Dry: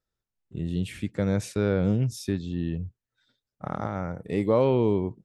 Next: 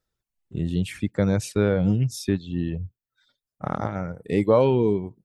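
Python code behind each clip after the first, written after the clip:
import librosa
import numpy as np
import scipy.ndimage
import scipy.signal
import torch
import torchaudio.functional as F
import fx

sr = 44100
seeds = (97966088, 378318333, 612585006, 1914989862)

y = fx.dereverb_blind(x, sr, rt60_s=1.0)
y = y * librosa.db_to_amplitude(5.0)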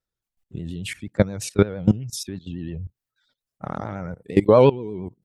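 y = fx.level_steps(x, sr, step_db=19)
y = fx.vibrato(y, sr, rate_hz=8.6, depth_cents=70.0)
y = y * librosa.db_to_amplitude(7.0)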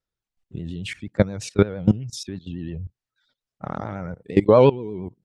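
y = scipy.signal.sosfilt(scipy.signal.butter(2, 6500.0, 'lowpass', fs=sr, output='sos'), x)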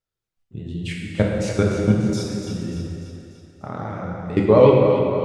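y = fx.echo_split(x, sr, split_hz=380.0, low_ms=156, high_ms=294, feedback_pct=52, wet_db=-8.5)
y = fx.rev_plate(y, sr, seeds[0], rt60_s=2.4, hf_ratio=0.7, predelay_ms=0, drr_db=-2.0)
y = y * librosa.db_to_amplitude(-2.5)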